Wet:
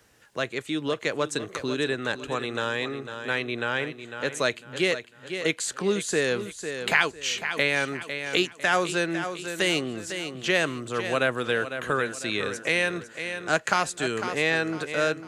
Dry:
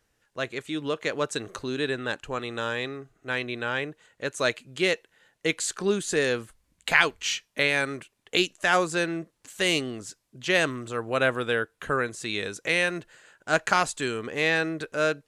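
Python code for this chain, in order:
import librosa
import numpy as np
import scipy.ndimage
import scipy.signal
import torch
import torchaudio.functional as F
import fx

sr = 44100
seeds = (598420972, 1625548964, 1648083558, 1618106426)

y = scipy.signal.sosfilt(scipy.signal.butter(2, 57.0, 'highpass', fs=sr, output='sos'), x)
y = fx.echo_feedback(y, sr, ms=501, feedback_pct=38, wet_db=-12)
y = fx.band_squash(y, sr, depth_pct=40)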